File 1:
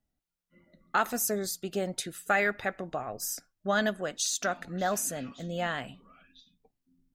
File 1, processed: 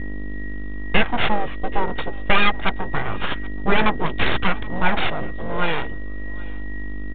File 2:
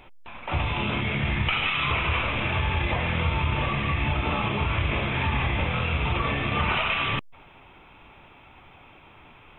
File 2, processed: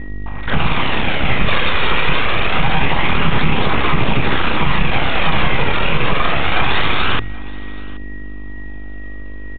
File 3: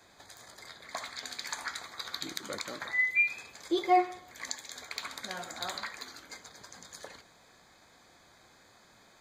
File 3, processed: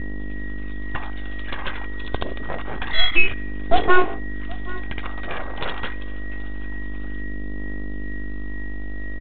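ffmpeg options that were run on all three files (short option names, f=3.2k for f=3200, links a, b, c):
-af "bandreject=f=50:t=h:w=6,bandreject=f=100:t=h:w=6,bandreject=f=150:t=h:w=6,bandreject=f=200:t=h:w=6,afwtdn=0.0112,bandreject=f=1.9k:w=20,aecho=1:1:2.5:0.46,aeval=exprs='val(0)+0.01*(sin(2*PI*50*n/s)+sin(2*PI*2*50*n/s)/2+sin(2*PI*3*50*n/s)/3+sin(2*PI*4*50*n/s)/4+sin(2*PI*5*50*n/s)/5)':c=same,acrusher=samples=6:mix=1:aa=0.000001,aeval=exprs='abs(val(0))':c=same,aeval=exprs='val(0)+0.00282*sin(2*PI*1900*n/s)':c=same,aphaser=in_gain=1:out_gain=1:delay=2.2:decay=0.28:speed=0.26:type=triangular,aecho=1:1:777:0.0708,alimiter=level_in=13.5dB:limit=-1dB:release=50:level=0:latency=1,volume=-1dB" -ar 8000 -c:a pcm_mulaw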